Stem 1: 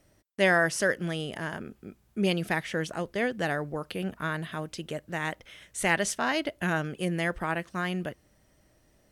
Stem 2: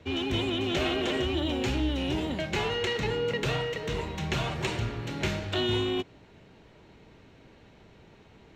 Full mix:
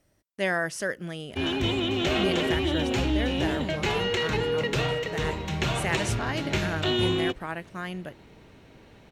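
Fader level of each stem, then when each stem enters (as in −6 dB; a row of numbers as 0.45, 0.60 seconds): −4.0, +2.5 decibels; 0.00, 1.30 seconds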